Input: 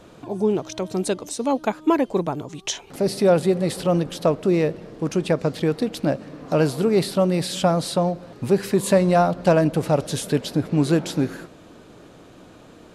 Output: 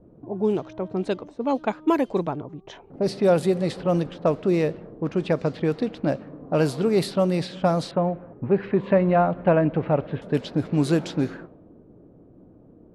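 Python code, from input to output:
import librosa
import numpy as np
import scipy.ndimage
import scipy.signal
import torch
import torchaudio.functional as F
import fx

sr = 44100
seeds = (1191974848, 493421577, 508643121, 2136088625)

y = fx.lowpass(x, sr, hz=2600.0, slope=24, at=(7.91, 10.22))
y = fx.env_lowpass(y, sr, base_hz=360.0, full_db=-15.0)
y = y * librosa.db_to_amplitude(-2.0)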